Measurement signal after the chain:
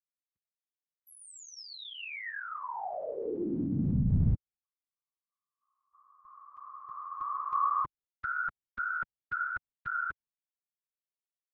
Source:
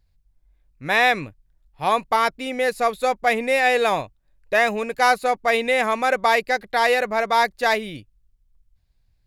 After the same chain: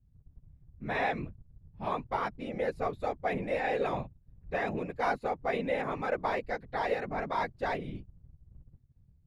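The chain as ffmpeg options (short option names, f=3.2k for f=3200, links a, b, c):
-af "aemphasis=mode=reproduction:type=riaa,agate=range=-33dB:threshold=-42dB:ratio=3:detection=peak,afftfilt=real='hypot(re,im)*cos(2*PI*random(0))':imag='hypot(re,im)*sin(2*PI*random(1))':win_size=512:overlap=0.75,volume=-7.5dB"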